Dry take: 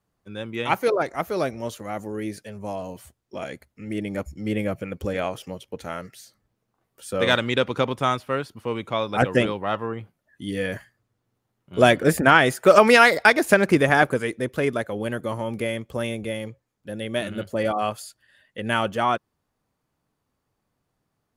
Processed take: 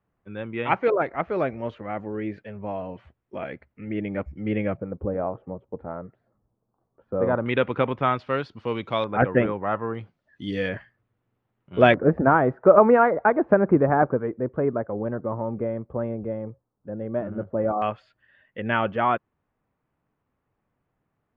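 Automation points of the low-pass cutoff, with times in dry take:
low-pass 24 dB/octave
2.6 kHz
from 4.77 s 1.1 kHz
from 7.46 s 2.7 kHz
from 8.19 s 4.5 kHz
from 9.04 s 2 kHz
from 9.95 s 5.1 kHz
from 10.69 s 3 kHz
from 11.94 s 1.2 kHz
from 17.82 s 2.6 kHz

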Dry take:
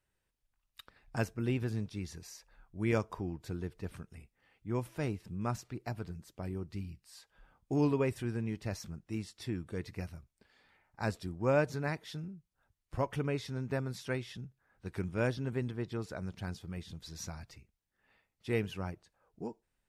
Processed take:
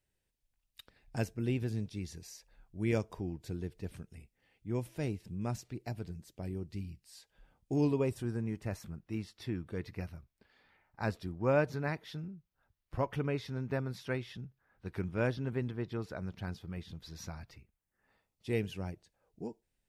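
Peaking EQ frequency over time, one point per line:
peaking EQ -9 dB 0.97 oct
7.82 s 1.2 kHz
9.08 s 8 kHz
17.52 s 8 kHz
18.57 s 1.2 kHz

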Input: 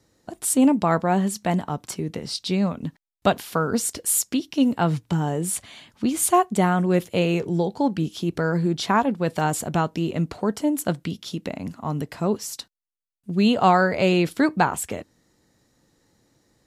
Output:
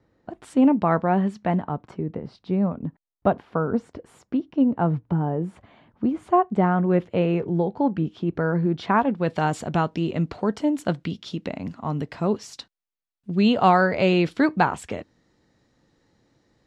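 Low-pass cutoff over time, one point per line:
1.40 s 2.1 kHz
2.17 s 1.1 kHz
6.18 s 1.1 kHz
6.89 s 1.8 kHz
8.62 s 1.8 kHz
9.43 s 4.3 kHz

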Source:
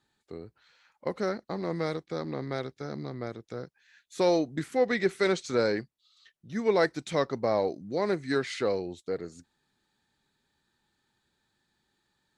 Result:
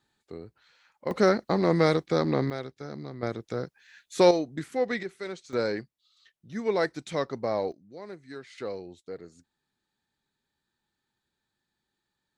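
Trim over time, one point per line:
+0.5 dB
from 1.11 s +9 dB
from 2.50 s -2 dB
from 3.23 s +6 dB
from 4.31 s -2 dB
from 5.03 s -11 dB
from 5.53 s -2 dB
from 7.72 s -14 dB
from 8.58 s -7 dB

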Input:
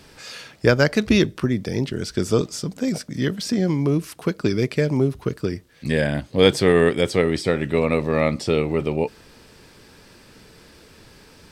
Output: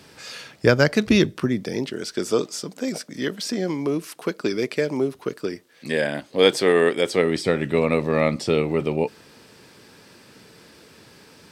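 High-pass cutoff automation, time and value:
1.22 s 93 Hz
1.97 s 290 Hz
7.03 s 290 Hz
7.47 s 120 Hz

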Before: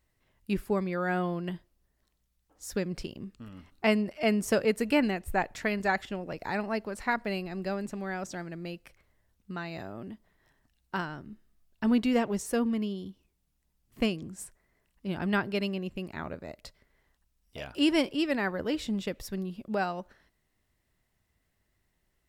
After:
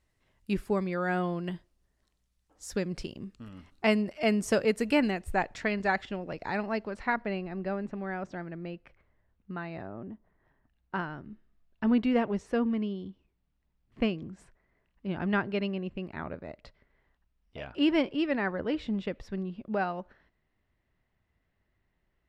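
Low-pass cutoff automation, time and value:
5.19 s 9.9 kHz
5.77 s 5 kHz
6.77 s 5 kHz
7.38 s 2.2 kHz
9.73 s 2.2 kHz
10.09 s 1.2 kHz
11.20 s 2.8 kHz

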